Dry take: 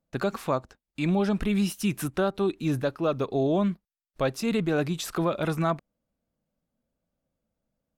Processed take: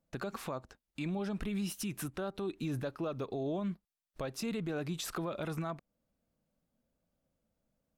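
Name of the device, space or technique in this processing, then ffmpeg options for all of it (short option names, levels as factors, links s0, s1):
stacked limiters: -af "alimiter=limit=0.106:level=0:latency=1:release=310,alimiter=limit=0.0708:level=0:latency=1:release=86,alimiter=level_in=1.68:limit=0.0631:level=0:latency=1:release=221,volume=0.596"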